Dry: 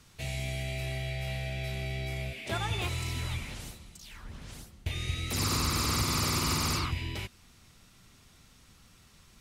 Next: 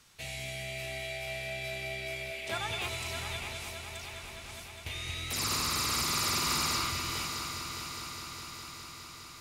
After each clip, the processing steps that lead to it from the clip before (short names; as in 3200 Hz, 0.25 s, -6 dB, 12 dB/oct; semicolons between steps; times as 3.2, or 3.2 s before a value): low shelf 410 Hz -11 dB; multi-head echo 0.205 s, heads first and third, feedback 75%, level -10 dB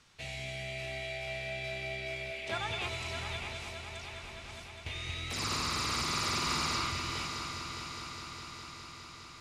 air absorption 70 m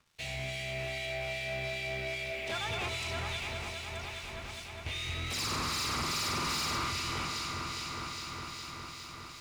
harmonic tremolo 2.5 Hz, depth 50%, crossover 2200 Hz; sample leveller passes 3; gain -5.5 dB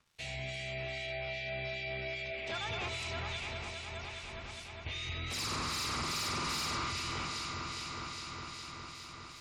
spectral gate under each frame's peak -30 dB strong; gain -2.5 dB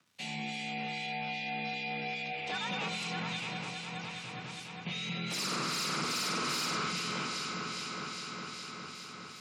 frequency shift +88 Hz; gain +2 dB